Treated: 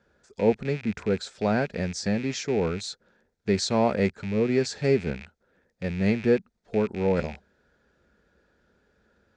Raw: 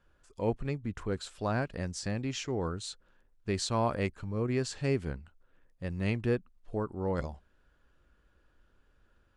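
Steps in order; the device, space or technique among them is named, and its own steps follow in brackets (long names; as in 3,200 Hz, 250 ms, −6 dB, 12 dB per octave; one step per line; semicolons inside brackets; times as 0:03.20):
car door speaker with a rattle (loose part that buzzes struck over −48 dBFS, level −33 dBFS; loudspeaker in its box 100–7,000 Hz, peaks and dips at 120 Hz −7 dB, 210 Hz +5 dB, 300 Hz −5 dB, 440 Hz +4 dB, 1,100 Hz −10 dB, 2,900 Hz −10 dB)
level +7.5 dB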